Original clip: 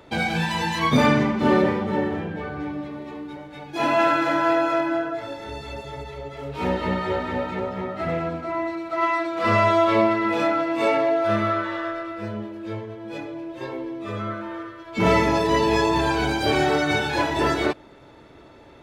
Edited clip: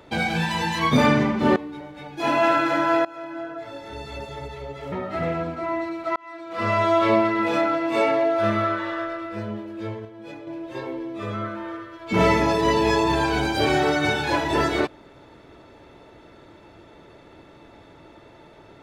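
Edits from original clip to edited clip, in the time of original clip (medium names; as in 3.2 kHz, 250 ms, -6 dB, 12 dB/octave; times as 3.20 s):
1.56–3.12 s: delete
4.61–5.73 s: fade in, from -21.5 dB
6.48–7.78 s: delete
9.02–9.87 s: fade in
12.91–13.33 s: gain -5.5 dB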